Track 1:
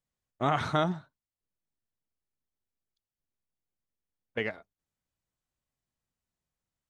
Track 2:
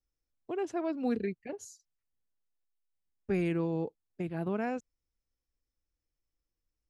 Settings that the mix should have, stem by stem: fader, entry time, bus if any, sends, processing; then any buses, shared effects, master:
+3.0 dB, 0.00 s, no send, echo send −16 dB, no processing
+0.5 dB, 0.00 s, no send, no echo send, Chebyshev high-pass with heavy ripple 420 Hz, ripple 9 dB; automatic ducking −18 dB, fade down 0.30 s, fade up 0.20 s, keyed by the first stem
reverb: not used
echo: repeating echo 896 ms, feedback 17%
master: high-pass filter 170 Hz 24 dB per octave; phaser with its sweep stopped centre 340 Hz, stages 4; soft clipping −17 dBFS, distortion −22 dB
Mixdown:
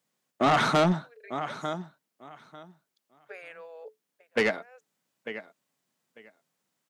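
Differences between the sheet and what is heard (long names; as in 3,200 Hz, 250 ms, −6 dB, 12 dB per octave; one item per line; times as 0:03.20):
stem 1 +3.0 dB → +11.5 dB
master: missing phaser with its sweep stopped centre 340 Hz, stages 4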